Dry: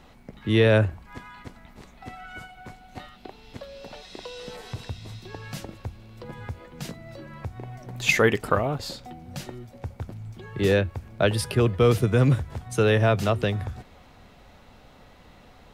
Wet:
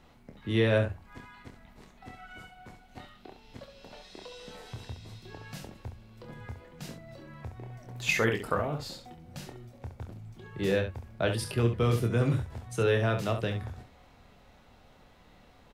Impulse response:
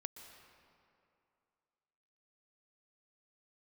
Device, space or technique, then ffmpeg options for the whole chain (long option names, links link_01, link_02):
slapback doubling: -filter_complex "[0:a]asplit=3[link_01][link_02][link_03];[link_02]adelay=26,volume=-6.5dB[link_04];[link_03]adelay=68,volume=-8.5dB[link_05];[link_01][link_04][link_05]amix=inputs=3:normalize=0,volume=-7.5dB"